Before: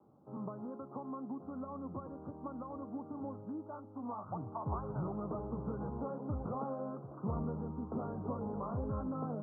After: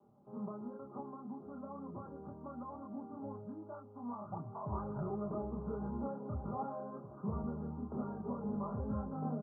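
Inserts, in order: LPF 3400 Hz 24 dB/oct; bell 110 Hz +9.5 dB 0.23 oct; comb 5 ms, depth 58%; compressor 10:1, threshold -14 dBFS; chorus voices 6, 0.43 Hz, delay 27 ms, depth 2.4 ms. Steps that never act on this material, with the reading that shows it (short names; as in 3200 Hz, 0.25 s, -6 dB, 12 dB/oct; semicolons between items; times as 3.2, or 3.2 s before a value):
LPF 3400 Hz: input band ends at 1400 Hz; compressor, threshold -14 dBFS: input peak -24.0 dBFS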